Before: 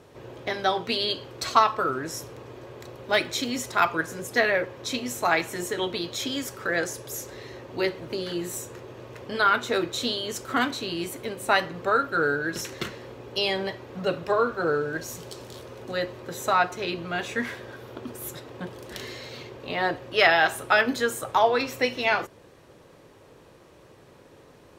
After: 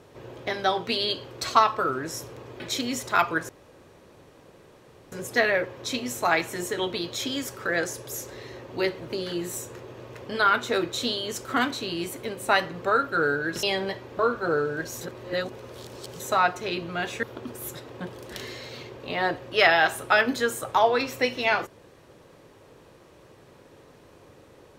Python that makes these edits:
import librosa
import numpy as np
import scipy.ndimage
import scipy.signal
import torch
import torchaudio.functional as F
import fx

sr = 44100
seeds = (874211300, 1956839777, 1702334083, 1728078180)

y = fx.edit(x, sr, fx.cut(start_s=2.6, length_s=0.63),
    fx.insert_room_tone(at_s=4.12, length_s=1.63),
    fx.cut(start_s=12.63, length_s=0.78),
    fx.cut(start_s=13.97, length_s=0.38),
    fx.reverse_span(start_s=15.17, length_s=1.19),
    fx.cut(start_s=17.39, length_s=0.44), tone=tone)